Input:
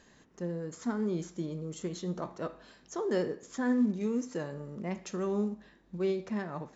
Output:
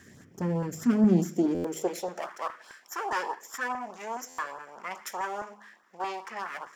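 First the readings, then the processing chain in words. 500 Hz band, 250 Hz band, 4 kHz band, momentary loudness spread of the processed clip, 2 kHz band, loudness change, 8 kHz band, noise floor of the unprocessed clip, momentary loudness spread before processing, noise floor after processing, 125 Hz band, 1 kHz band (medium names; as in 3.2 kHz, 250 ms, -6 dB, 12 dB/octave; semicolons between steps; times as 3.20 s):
-0.5 dB, +3.5 dB, +4.0 dB, 15 LU, +8.5 dB, +3.5 dB, no reading, -62 dBFS, 11 LU, -57 dBFS, +4.5 dB, +11.0 dB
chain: comb filter that takes the minimum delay 0.54 ms; sine folder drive 5 dB, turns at -18.5 dBFS; high-pass sweep 98 Hz -> 970 Hz, 0.68–2.40 s; de-hum 52.4 Hz, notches 5; LFO notch saw up 4.8 Hz 460–2600 Hz; peaking EQ 3.8 kHz -12 dB 0.31 oct; buffer glitch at 1.54/4.28 s, samples 512, times 8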